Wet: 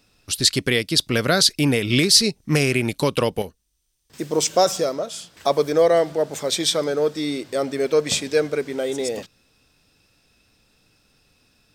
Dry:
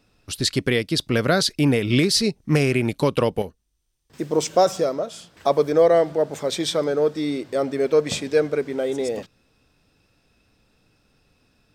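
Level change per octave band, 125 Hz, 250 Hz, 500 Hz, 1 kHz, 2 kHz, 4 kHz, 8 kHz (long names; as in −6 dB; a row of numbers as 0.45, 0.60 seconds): −1.0, −1.0, −0.5, 0.0, +2.5, +5.5, +7.0 decibels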